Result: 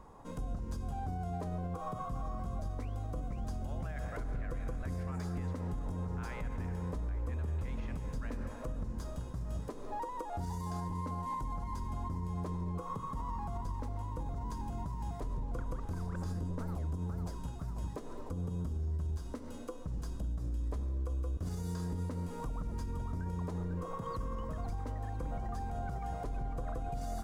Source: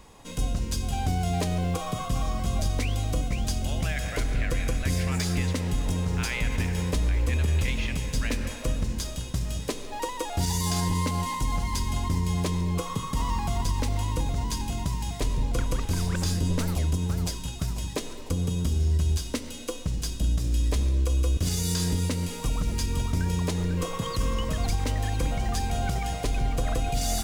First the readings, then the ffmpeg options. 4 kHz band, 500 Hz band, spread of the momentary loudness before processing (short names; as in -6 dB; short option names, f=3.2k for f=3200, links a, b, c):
-25.0 dB, -10.0 dB, 5 LU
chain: -af "highshelf=f=1.8k:t=q:w=1.5:g=-13,alimiter=level_in=2.5dB:limit=-24dB:level=0:latency=1:release=203,volume=-2.5dB,volume=-3.5dB"